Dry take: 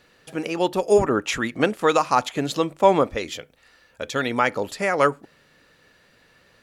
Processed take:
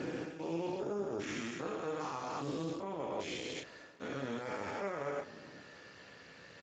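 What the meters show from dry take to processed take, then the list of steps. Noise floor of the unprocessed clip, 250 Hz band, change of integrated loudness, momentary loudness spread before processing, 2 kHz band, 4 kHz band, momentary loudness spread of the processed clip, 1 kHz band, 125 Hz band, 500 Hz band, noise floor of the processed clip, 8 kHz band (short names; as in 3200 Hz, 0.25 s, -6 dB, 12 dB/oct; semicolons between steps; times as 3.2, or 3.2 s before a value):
-59 dBFS, -14.0 dB, -18.0 dB, 12 LU, -17.5 dB, -15.5 dB, 15 LU, -19.5 dB, -13.5 dB, -17.5 dB, -56 dBFS, -16.0 dB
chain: stepped spectrum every 0.4 s; reverse; compressor 20:1, threshold -37 dBFS, peak gain reduction 18.5 dB; reverse; limiter -35 dBFS, peak gain reduction 10.5 dB; doubler 30 ms -5 dB; on a send: analogue delay 0.102 s, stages 1024, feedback 80%, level -21 dB; on the sum: gain +4 dB; Speex 13 kbps 16000 Hz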